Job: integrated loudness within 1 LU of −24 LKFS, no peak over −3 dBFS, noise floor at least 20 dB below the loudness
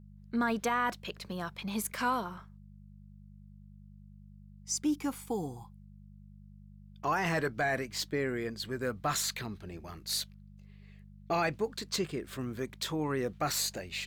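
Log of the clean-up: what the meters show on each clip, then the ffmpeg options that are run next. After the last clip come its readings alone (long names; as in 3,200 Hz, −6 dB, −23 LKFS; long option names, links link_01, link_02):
mains hum 50 Hz; hum harmonics up to 200 Hz; level of the hum −50 dBFS; integrated loudness −33.5 LKFS; sample peak −20.5 dBFS; target loudness −24.0 LKFS
→ -af "bandreject=frequency=50:width_type=h:width=4,bandreject=frequency=100:width_type=h:width=4,bandreject=frequency=150:width_type=h:width=4,bandreject=frequency=200:width_type=h:width=4"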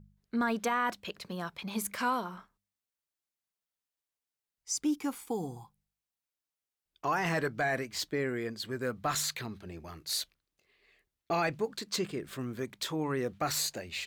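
mains hum none found; integrated loudness −33.5 LKFS; sample peak −20.5 dBFS; target loudness −24.0 LKFS
→ -af "volume=9.5dB"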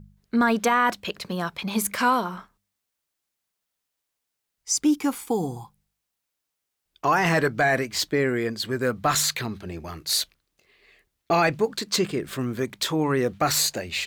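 integrated loudness −24.0 LKFS; sample peak −11.0 dBFS; background noise floor −82 dBFS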